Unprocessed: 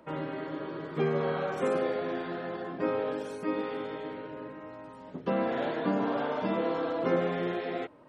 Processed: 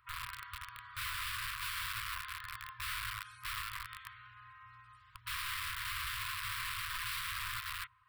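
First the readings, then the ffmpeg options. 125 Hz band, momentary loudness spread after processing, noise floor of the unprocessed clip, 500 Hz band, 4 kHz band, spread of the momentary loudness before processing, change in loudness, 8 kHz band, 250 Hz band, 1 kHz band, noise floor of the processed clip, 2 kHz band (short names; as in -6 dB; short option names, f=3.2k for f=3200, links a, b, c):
-12.0 dB, 15 LU, -48 dBFS, under -40 dB, +7.0 dB, 11 LU, -7.5 dB, n/a, under -40 dB, -8.0 dB, -62 dBFS, +1.0 dB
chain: -af "aeval=exprs='(mod(28.2*val(0)+1,2)-1)/28.2':c=same,equalizer=f=6.4k:t=o:w=0.47:g=-12.5,afftfilt=real='re*(1-between(b*sr/4096,120,970))':imag='im*(1-between(b*sr/4096,120,970))':win_size=4096:overlap=0.75,volume=-3.5dB"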